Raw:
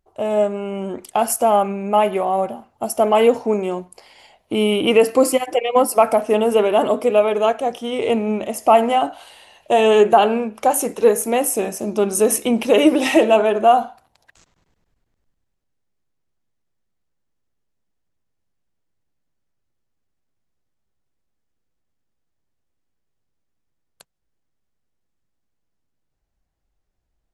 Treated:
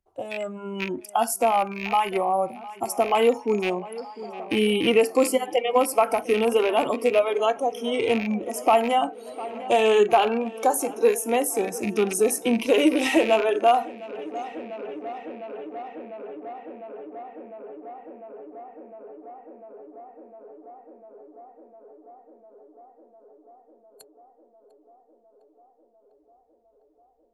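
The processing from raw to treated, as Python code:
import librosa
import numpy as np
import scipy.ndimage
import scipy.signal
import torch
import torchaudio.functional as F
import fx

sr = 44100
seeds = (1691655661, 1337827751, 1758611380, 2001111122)

y = fx.rattle_buzz(x, sr, strikes_db=-29.0, level_db=-14.0)
y = fx.noise_reduce_blind(y, sr, reduce_db=17)
y = fx.echo_tape(y, sr, ms=702, feedback_pct=86, wet_db=-20.0, lp_hz=2300.0, drive_db=6.0, wow_cents=35)
y = fx.band_squash(y, sr, depth_pct=40)
y = F.gain(torch.from_numpy(y), -4.0).numpy()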